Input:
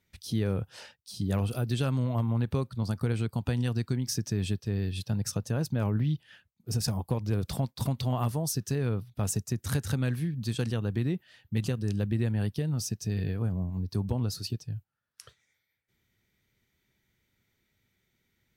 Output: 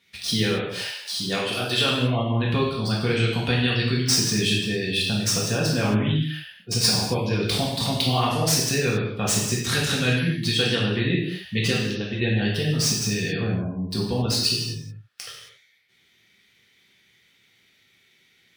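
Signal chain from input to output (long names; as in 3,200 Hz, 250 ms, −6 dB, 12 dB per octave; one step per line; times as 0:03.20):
meter weighting curve D
in parallel at −4.5 dB: sample-rate reduction 14,000 Hz, jitter 20%
0:00.44–0:01.89: on the sum: parametric band 100 Hz −7 dB 2.9 octaves
0:11.74–0:12.21: downward compressor, threshold −28 dBFS, peak gain reduction 6.5 dB
gate on every frequency bin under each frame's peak −30 dB strong
reverb whose tail is shaped and stops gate 300 ms falling, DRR −5 dB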